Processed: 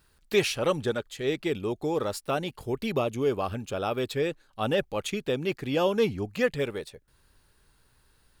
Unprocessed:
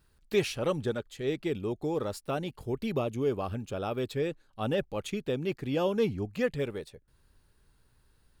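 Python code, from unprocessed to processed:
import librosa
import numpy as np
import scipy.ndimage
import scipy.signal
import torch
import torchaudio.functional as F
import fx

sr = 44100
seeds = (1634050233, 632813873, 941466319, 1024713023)

y = fx.low_shelf(x, sr, hz=450.0, db=-6.5)
y = y * 10.0 ** (6.5 / 20.0)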